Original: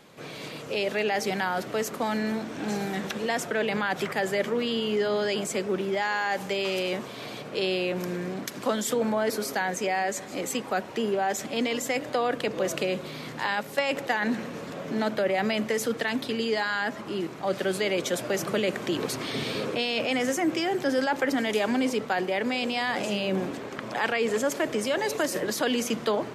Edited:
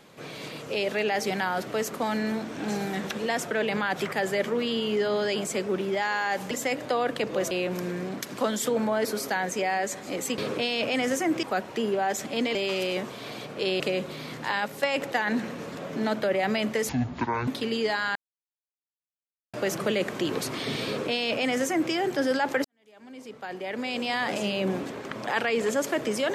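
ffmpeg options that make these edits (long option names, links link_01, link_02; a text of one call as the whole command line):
ffmpeg -i in.wav -filter_complex "[0:a]asplit=12[link_01][link_02][link_03][link_04][link_05][link_06][link_07][link_08][link_09][link_10][link_11][link_12];[link_01]atrim=end=6.512[link_13];[link_02]atrim=start=11.748:end=12.752[link_14];[link_03]atrim=start=7.758:end=10.632[link_15];[link_04]atrim=start=19.548:end=20.602[link_16];[link_05]atrim=start=10.628:end=11.752[link_17];[link_06]atrim=start=6.508:end=7.762[link_18];[link_07]atrim=start=12.748:end=15.844[link_19];[link_08]atrim=start=15.84:end=16.15,asetpts=PTS-STARTPTS,asetrate=23373,aresample=44100,atrim=end_sample=25794,asetpts=PTS-STARTPTS[link_20];[link_09]atrim=start=16.146:end=16.83,asetpts=PTS-STARTPTS,afade=type=out:start_time=0.68:duration=0.004:curve=hsin[link_21];[link_10]atrim=start=16.83:end=18.21,asetpts=PTS-STARTPTS,volume=0[link_22];[link_11]atrim=start=18.21:end=21.32,asetpts=PTS-STARTPTS,afade=type=in:duration=0.004:curve=hsin,afade=type=out:start_time=3.106:duration=0.004:curve=hsin[link_23];[link_12]atrim=start=21.32,asetpts=PTS-STARTPTS,afade=type=in:duration=1.48:curve=qua[link_24];[link_13][link_14]acrossfade=duration=0.004:curve1=hsin:curve2=hsin[link_25];[link_25][link_15]acrossfade=duration=0.004:curve1=hsin:curve2=hsin[link_26];[link_26][link_16]acrossfade=duration=0.004:curve1=hsin:curve2=hsin[link_27];[link_27][link_17]acrossfade=duration=0.004:curve1=hsin:curve2=hsin[link_28];[link_28][link_18]acrossfade=duration=0.004:curve1=hsin:curve2=hsin[link_29];[link_29][link_19]acrossfade=duration=0.004:curve1=hsin:curve2=hsin[link_30];[link_30][link_20]acrossfade=duration=0.004:curve1=hsin:curve2=hsin[link_31];[link_21][link_22][link_23][link_24]concat=n=4:v=0:a=1[link_32];[link_31][link_32]acrossfade=duration=0.004:curve1=hsin:curve2=hsin" out.wav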